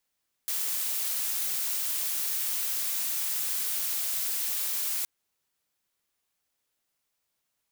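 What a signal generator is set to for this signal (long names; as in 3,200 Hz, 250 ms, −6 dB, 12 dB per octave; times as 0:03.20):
noise blue, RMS −30 dBFS 4.57 s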